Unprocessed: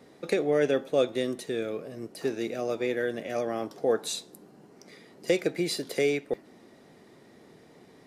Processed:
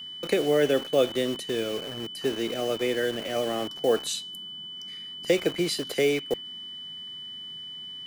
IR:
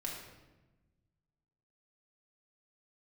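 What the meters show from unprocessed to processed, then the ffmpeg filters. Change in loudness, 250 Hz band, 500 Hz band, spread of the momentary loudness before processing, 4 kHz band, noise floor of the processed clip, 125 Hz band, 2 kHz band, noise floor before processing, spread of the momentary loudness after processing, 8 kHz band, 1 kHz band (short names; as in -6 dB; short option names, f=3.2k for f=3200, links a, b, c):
+1.5 dB, +2.0 dB, +2.0 dB, 10 LU, +9.5 dB, -40 dBFS, +2.0 dB, +2.5 dB, -55 dBFS, 13 LU, +3.0 dB, +2.0 dB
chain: -filter_complex "[0:a]acrossover=split=270|950[a][b][c];[b]acrusher=bits=6:mix=0:aa=0.000001[d];[a][d][c]amix=inputs=3:normalize=0,aeval=exprs='val(0)+0.0112*sin(2*PI*3000*n/s)':c=same,volume=2dB"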